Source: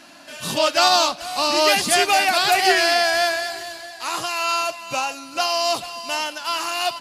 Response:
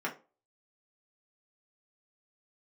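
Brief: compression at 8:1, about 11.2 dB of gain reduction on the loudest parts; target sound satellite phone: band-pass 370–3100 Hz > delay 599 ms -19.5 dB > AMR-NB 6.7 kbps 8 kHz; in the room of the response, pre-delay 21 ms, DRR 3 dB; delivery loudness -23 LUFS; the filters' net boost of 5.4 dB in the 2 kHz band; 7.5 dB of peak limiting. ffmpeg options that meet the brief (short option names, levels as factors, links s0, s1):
-filter_complex "[0:a]equalizer=f=2000:t=o:g=8,acompressor=threshold=0.0891:ratio=8,alimiter=limit=0.119:level=0:latency=1,asplit=2[s0][s1];[1:a]atrim=start_sample=2205,adelay=21[s2];[s1][s2]afir=irnorm=-1:irlink=0,volume=0.355[s3];[s0][s3]amix=inputs=2:normalize=0,highpass=370,lowpass=3100,aecho=1:1:599:0.106,volume=2.11" -ar 8000 -c:a libopencore_amrnb -b:a 6700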